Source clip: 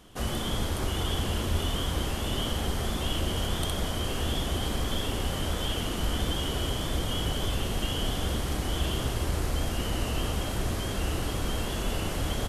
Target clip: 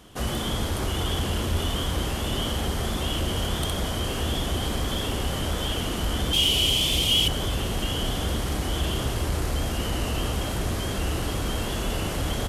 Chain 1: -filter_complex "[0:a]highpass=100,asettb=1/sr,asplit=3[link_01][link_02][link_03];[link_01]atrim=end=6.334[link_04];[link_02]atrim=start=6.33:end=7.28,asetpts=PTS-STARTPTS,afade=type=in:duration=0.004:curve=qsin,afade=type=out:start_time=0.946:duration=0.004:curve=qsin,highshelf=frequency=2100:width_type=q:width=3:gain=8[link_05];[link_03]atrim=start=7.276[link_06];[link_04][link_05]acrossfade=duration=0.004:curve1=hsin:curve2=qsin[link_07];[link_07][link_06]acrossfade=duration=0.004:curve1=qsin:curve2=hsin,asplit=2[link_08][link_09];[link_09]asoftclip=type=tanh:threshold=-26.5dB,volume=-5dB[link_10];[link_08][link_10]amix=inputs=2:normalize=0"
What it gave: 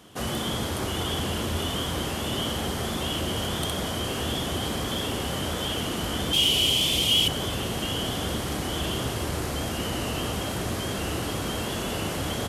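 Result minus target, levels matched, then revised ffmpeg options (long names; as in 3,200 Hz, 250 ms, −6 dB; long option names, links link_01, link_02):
125 Hz band −3.0 dB
-filter_complex "[0:a]highpass=27,asettb=1/sr,asplit=3[link_01][link_02][link_03];[link_01]atrim=end=6.334[link_04];[link_02]atrim=start=6.33:end=7.28,asetpts=PTS-STARTPTS,afade=type=in:duration=0.004:curve=qsin,afade=type=out:start_time=0.946:duration=0.004:curve=qsin,highshelf=frequency=2100:width_type=q:width=3:gain=8[link_05];[link_03]atrim=start=7.276[link_06];[link_04][link_05]acrossfade=duration=0.004:curve1=hsin:curve2=qsin[link_07];[link_07][link_06]acrossfade=duration=0.004:curve1=qsin:curve2=hsin,asplit=2[link_08][link_09];[link_09]asoftclip=type=tanh:threshold=-26.5dB,volume=-5dB[link_10];[link_08][link_10]amix=inputs=2:normalize=0"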